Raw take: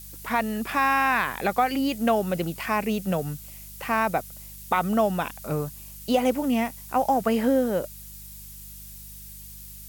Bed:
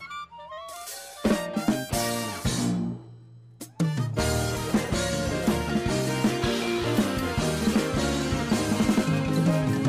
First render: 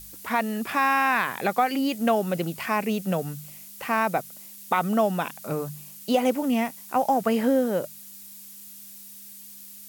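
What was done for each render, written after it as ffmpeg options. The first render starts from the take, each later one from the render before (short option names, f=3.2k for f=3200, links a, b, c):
-af "bandreject=f=50:t=h:w=4,bandreject=f=100:t=h:w=4,bandreject=f=150:t=h:w=4"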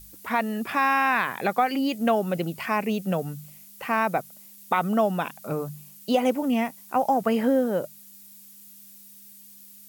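-af "afftdn=nr=6:nf=-44"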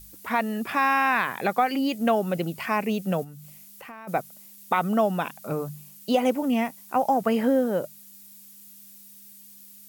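-filter_complex "[0:a]asplit=3[a][b][c];[a]afade=t=out:st=3.23:d=0.02[d];[b]acompressor=threshold=-41dB:ratio=4:attack=3.2:release=140:knee=1:detection=peak,afade=t=in:st=3.23:d=0.02,afade=t=out:st=4.07:d=0.02[e];[c]afade=t=in:st=4.07:d=0.02[f];[d][e][f]amix=inputs=3:normalize=0"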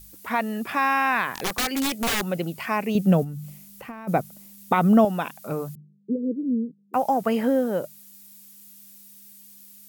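-filter_complex "[0:a]asettb=1/sr,asplit=3[a][b][c];[a]atrim=end=1.354[d];[b]atrim=start=1.35:end=2.32,asetpts=PTS-STARTPTS,afade=t=in:d=0.004:c=qsin,afade=t=out:st=0.966:d=0.004:c=qsin,aeval=exprs='(mod(9.44*val(0)+1,2)-1)/9.44':c=same[e];[c]atrim=start=2.316[f];[d][e]acrossfade=d=0.004:c1=hsin:c2=qsin[g];[g][f]acrossfade=d=0.004:c1=qsin:c2=hsin,asettb=1/sr,asplit=3[h][i][j];[h]atrim=end=2.954[k];[i]atrim=start=2.95:end=5.05,asetpts=PTS-STARTPTS,afade=t=in:d=0.004:c=qsin,afade=t=out:st=2.096:d=0.004:c=qsin,lowshelf=f=390:g=12[l];[j]atrim=start=5.046[m];[k][l]acrossfade=d=0.004:c1=hsin:c2=qsin[n];[n][m]acrossfade=d=0.004:c1=qsin:c2=hsin,asettb=1/sr,asplit=3[o][p][q];[o]atrim=end=5.754[r];[p]atrim=start=5.75:end=6.94,asetpts=PTS-STARTPTS,afade=t=in:d=0.004:c=qsin,afade=t=out:st=1.186:d=0.004:c=qsin,asuperpass=centerf=250:order=20:qfactor=0.73[s];[q]atrim=start=6.936[t];[r][s]acrossfade=d=0.004:c1=hsin:c2=qsin[u];[u][t]acrossfade=d=0.004:c1=qsin:c2=hsin"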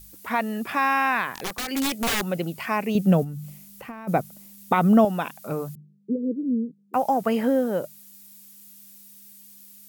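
-filter_complex "[0:a]asplit=2[a][b];[a]atrim=end=1.68,asetpts=PTS-STARTPTS,afade=t=out:st=1.05:d=0.63:silence=0.473151[c];[b]atrim=start=1.68,asetpts=PTS-STARTPTS,afade=t=in:d=0.004:c=hsin:silence=0.473151[d];[c][d]concat=n=2:v=0:a=1"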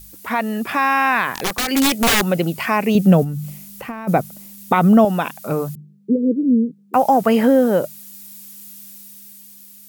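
-filter_complex "[0:a]asplit=2[a][b];[b]alimiter=limit=-17dB:level=0:latency=1:release=54,volume=-1dB[c];[a][c]amix=inputs=2:normalize=0,dynaudnorm=f=220:g=9:m=4.5dB"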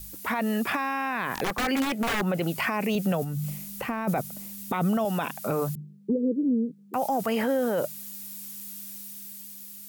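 -filter_complex "[0:a]acrossover=split=590|2500[a][b][c];[a]acompressor=threshold=-25dB:ratio=4[d];[b]acompressor=threshold=-23dB:ratio=4[e];[c]acompressor=threshold=-35dB:ratio=4[f];[d][e][f]amix=inputs=3:normalize=0,alimiter=limit=-18dB:level=0:latency=1:release=10"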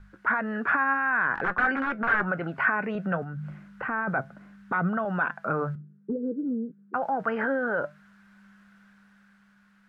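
-af "flanger=delay=5.1:depth=2.4:regen=78:speed=0.59:shape=triangular,lowpass=f=1.5k:t=q:w=7.3"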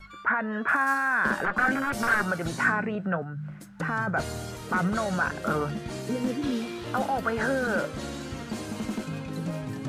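-filter_complex "[1:a]volume=-9.5dB[a];[0:a][a]amix=inputs=2:normalize=0"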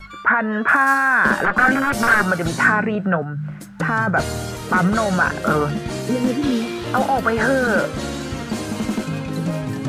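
-af "volume=9dB,alimiter=limit=-3dB:level=0:latency=1"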